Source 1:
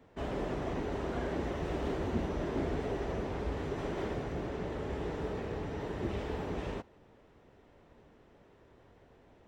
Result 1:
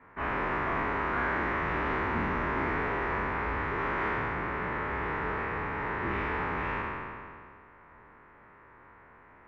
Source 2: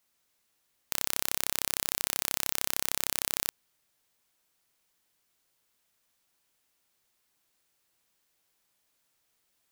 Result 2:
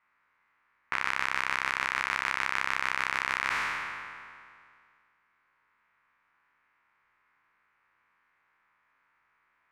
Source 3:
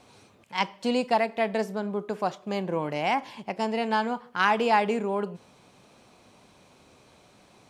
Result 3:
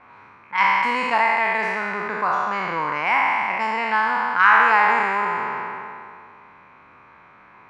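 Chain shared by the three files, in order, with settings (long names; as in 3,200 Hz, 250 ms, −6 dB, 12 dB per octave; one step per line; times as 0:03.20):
peak hold with a decay on every bin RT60 2.31 s
flat-topped bell 1,500 Hz +15.5 dB
in parallel at +2.5 dB: downward compressor, threshold −20 dBFS
on the sum: low-pass that shuts in the quiet parts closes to 2,000 Hz, open at −6 dBFS
level −10.5 dB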